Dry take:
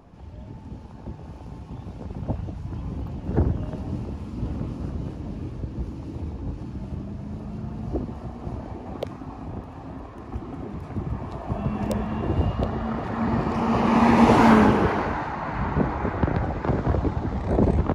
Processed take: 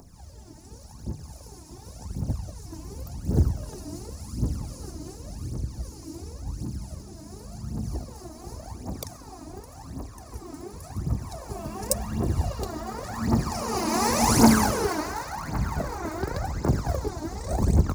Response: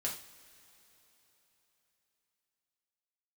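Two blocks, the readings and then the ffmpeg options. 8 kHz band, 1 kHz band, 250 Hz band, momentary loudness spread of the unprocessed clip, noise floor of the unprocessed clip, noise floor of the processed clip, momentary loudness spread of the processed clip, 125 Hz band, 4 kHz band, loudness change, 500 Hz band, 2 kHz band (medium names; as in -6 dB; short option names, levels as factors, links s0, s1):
no reading, -4.5 dB, -4.5 dB, 19 LU, -40 dBFS, -46 dBFS, 18 LU, -2.0 dB, +5.0 dB, -2.5 dB, -5.0 dB, -4.5 dB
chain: -af "aphaser=in_gain=1:out_gain=1:delay=3.3:decay=0.72:speed=0.9:type=triangular,aexciter=amount=8.7:drive=8:freq=4700,volume=0.422"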